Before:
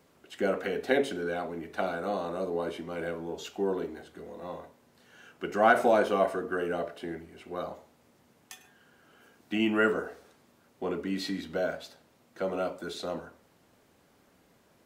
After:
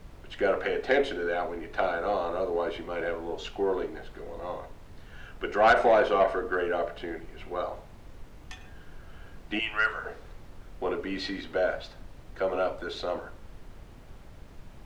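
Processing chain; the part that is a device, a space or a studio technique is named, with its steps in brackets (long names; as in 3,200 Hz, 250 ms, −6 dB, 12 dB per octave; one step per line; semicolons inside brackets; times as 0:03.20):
0:09.59–0:10.05: high-pass filter 1,200 Hz 12 dB per octave
aircraft cabin announcement (band-pass filter 380–3,900 Hz; soft clipping −18 dBFS, distortion −15 dB; brown noise bed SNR 14 dB)
level +5 dB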